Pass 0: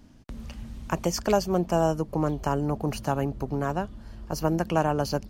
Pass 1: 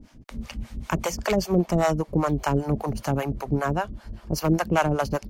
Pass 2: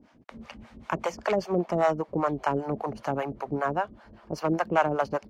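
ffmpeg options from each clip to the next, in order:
-filter_complex "[0:a]equalizer=f=2.2k:w=6.9:g=5,asoftclip=type=hard:threshold=-17.5dB,acrossover=split=520[a][b];[a]aeval=exprs='val(0)*(1-1/2+1/2*cos(2*PI*5.1*n/s))':c=same[c];[b]aeval=exprs='val(0)*(1-1/2-1/2*cos(2*PI*5.1*n/s))':c=same[d];[c][d]amix=inputs=2:normalize=0,volume=8dB"
-af "bandpass=f=860:t=q:w=0.55:csg=0"

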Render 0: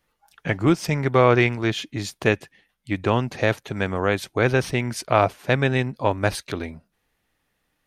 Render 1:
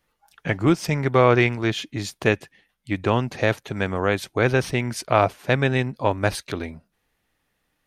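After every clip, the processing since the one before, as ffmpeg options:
-af anull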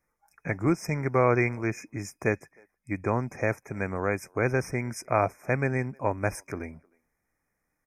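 -filter_complex "[0:a]asplit=2[a][b];[b]adelay=310,highpass=300,lowpass=3.4k,asoftclip=type=hard:threshold=-12dB,volume=-29dB[c];[a][c]amix=inputs=2:normalize=0,afftfilt=real='re*(1-between(b*sr/4096,2500,5000))':imag='im*(1-between(b*sr/4096,2500,5000))':win_size=4096:overlap=0.75,volume=-6dB"

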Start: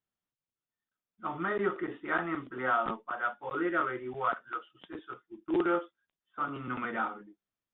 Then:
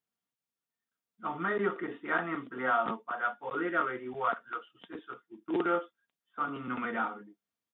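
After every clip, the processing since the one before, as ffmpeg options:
-af "highpass=95,aecho=1:1:4.3:0.31"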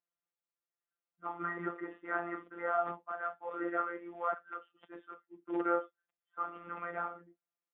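-filter_complex "[0:a]acrossover=split=300 2500:gain=0.251 1 0.112[a][b][c];[a][b][c]amix=inputs=3:normalize=0,afftfilt=real='hypot(re,im)*cos(PI*b)':imag='0':win_size=1024:overlap=0.75,acrossover=split=2600[d][e];[e]acompressor=threshold=-60dB:ratio=4:attack=1:release=60[f];[d][f]amix=inputs=2:normalize=0"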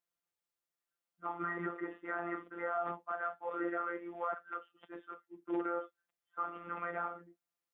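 -af "alimiter=level_in=2.5dB:limit=-24dB:level=0:latency=1:release=72,volume=-2.5dB,volume=1.5dB"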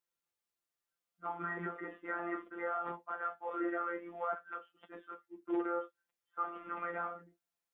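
-af "flanger=delay=7.9:depth=2.5:regen=-31:speed=0.33:shape=sinusoidal,volume=3.5dB"

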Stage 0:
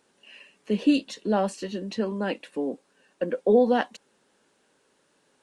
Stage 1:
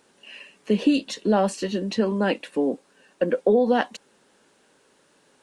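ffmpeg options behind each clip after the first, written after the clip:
-af "acompressor=threshold=-21dB:ratio=6,volume=6dB"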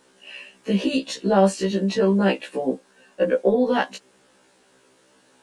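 -af "afftfilt=real='re*1.73*eq(mod(b,3),0)':imag='im*1.73*eq(mod(b,3),0)':win_size=2048:overlap=0.75,volume=5dB"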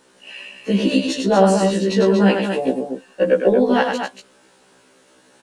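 -af "aecho=1:1:99.13|236.2:0.562|0.447,volume=3dB"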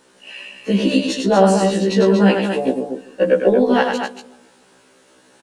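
-filter_complex "[0:a]asplit=2[a][b];[b]adelay=150,lowpass=f=820:p=1,volume=-16dB,asplit=2[c][d];[d]adelay=150,lowpass=f=820:p=1,volume=0.5,asplit=2[e][f];[f]adelay=150,lowpass=f=820:p=1,volume=0.5,asplit=2[g][h];[h]adelay=150,lowpass=f=820:p=1,volume=0.5[i];[a][c][e][g][i]amix=inputs=5:normalize=0,volume=1dB"

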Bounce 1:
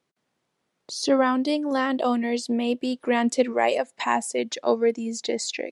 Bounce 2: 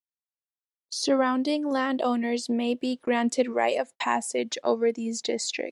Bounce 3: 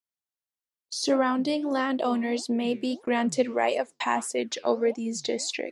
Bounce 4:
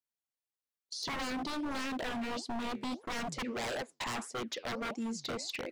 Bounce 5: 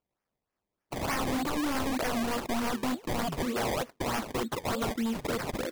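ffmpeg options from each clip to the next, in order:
-filter_complex "[0:a]agate=range=-54dB:threshold=-36dB:ratio=16:detection=peak,asplit=2[a][b];[b]acompressor=threshold=-29dB:ratio=6,volume=-1dB[c];[a][c]amix=inputs=2:normalize=0,volume=-4.5dB"
-af "flanger=delay=2.8:depth=9.3:regen=-83:speed=1.6:shape=sinusoidal,volume=4dB"
-filter_complex "[0:a]acrossover=split=4900[a][b];[a]aeval=exprs='0.0447*(abs(mod(val(0)/0.0447+3,4)-2)-1)':c=same[c];[b]acompressor=threshold=-45dB:ratio=6[d];[c][d]amix=inputs=2:normalize=0,volume=-4.5dB"
-af "acrusher=samples=22:mix=1:aa=0.000001:lfo=1:lforange=22:lforate=3.3,volume=6.5dB"

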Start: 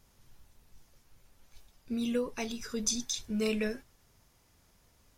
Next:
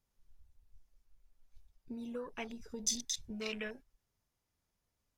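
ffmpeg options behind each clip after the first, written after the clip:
-filter_complex "[0:a]afwtdn=0.00708,acrossover=split=690[a][b];[a]acompressor=threshold=-40dB:ratio=6[c];[c][b]amix=inputs=2:normalize=0,volume=-2.5dB"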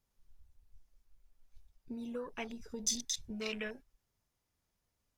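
-af "asoftclip=type=tanh:threshold=-18.5dB,volume=1dB"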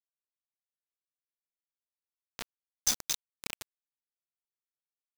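-af "acrusher=bits=4:mix=0:aa=0.000001,volume=4.5dB"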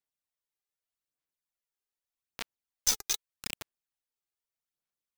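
-filter_complex "[0:a]aphaser=in_gain=1:out_gain=1:delay=2.5:decay=0.51:speed=0.82:type=sinusoidal,acrossover=split=1200[a][b];[a]asoftclip=type=hard:threshold=-35dB[c];[c][b]amix=inputs=2:normalize=0"

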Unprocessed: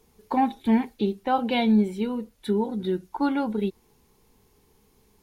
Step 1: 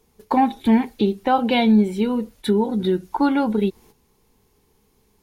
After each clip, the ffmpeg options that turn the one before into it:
-filter_complex "[0:a]agate=range=-10dB:threshold=-53dB:ratio=16:detection=peak,asplit=2[a][b];[b]acompressor=threshold=-30dB:ratio=6,volume=3dB[c];[a][c]amix=inputs=2:normalize=0,volume=2dB"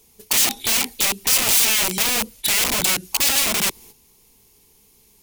-af "aeval=exprs='(mod(11.9*val(0)+1,2)-1)/11.9':c=same,aexciter=amount=3:drive=4.9:freq=2.2k"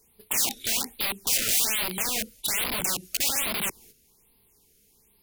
-af "afftfilt=real='re*(1-between(b*sr/1024,890*pow(7300/890,0.5+0.5*sin(2*PI*1.2*pts/sr))/1.41,890*pow(7300/890,0.5+0.5*sin(2*PI*1.2*pts/sr))*1.41))':imag='im*(1-between(b*sr/1024,890*pow(7300/890,0.5+0.5*sin(2*PI*1.2*pts/sr))/1.41,890*pow(7300/890,0.5+0.5*sin(2*PI*1.2*pts/sr))*1.41))':win_size=1024:overlap=0.75,volume=-7dB"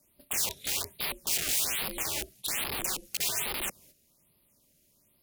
-af "aeval=exprs='val(0)*sin(2*PI*160*n/s)':c=same,volume=-2dB"

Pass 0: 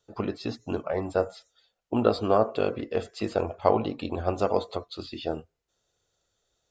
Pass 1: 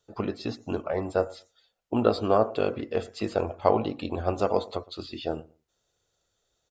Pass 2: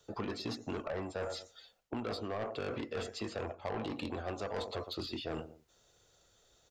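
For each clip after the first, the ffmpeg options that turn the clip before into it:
-filter_complex "[0:a]asplit=2[a][b];[b]adelay=114,lowpass=f=1.1k:p=1,volume=-21dB,asplit=2[c][d];[d]adelay=114,lowpass=f=1.1k:p=1,volume=0.18[e];[a][c][e]amix=inputs=3:normalize=0"
-filter_complex "[0:a]areverse,acompressor=threshold=-32dB:ratio=10,areverse,asoftclip=type=tanh:threshold=-34dB,acrossover=split=180|840[a][b][c];[a]acompressor=threshold=-55dB:ratio=4[d];[b]acompressor=threshold=-47dB:ratio=4[e];[c]acompressor=threshold=-50dB:ratio=4[f];[d][e][f]amix=inputs=3:normalize=0,volume=8dB"

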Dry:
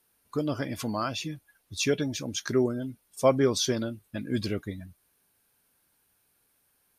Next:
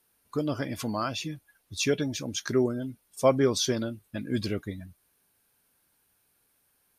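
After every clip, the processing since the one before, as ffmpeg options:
-af anull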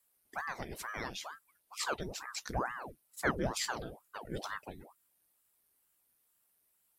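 -af "crystalizer=i=1:c=0,aeval=exprs='val(0)*sin(2*PI*780*n/s+780*0.9/2.2*sin(2*PI*2.2*n/s))':c=same,volume=-8dB"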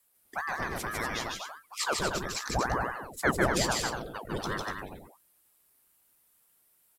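-af "aecho=1:1:151.6|242:0.794|0.501,volume=5dB"

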